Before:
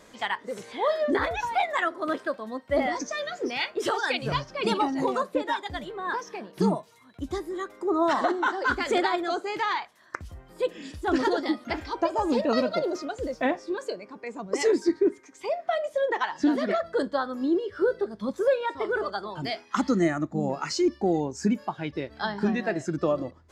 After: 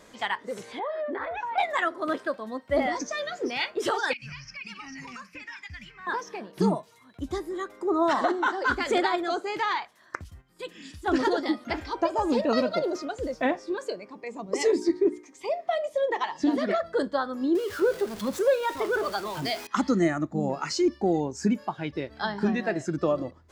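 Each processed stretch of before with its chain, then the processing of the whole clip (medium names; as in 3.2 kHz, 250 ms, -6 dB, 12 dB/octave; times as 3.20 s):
0.79–1.58 s: three-band isolator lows -15 dB, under 300 Hz, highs -22 dB, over 2.6 kHz + band-stop 440 Hz, Q 11 + compression, threshold -28 dBFS
4.13–6.07 s: FFT filter 120 Hz 0 dB, 240 Hz -8 dB, 370 Hz -26 dB, 620 Hz -25 dB, 1.3 kHz -6 dB, 2.5 kHz +11 dB, 3.7 kHz -13 dB, 5.3 kHz +10 dB, 8.1 kHz -8 dB + compression, threshold -37 dBFS
10.24–11.06 s: high-pass 82 Hz 6 dB/octave + gate -50 dBFS, range -9 dB + peaking EQ 560 Hz -13 dB 1.6 oct
14.09–16.58 s: peaking EQ 1.5 kHz -14.5 dB 0.21 oct + hum notches 60/120/180/240/300/360/420 Hz
17.55–19.67 s: jump at every zero crossing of -37 dBFS + tone controls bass -2 dB, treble +3 dB + tape noise reduction on one side only encoder only
whole clip: none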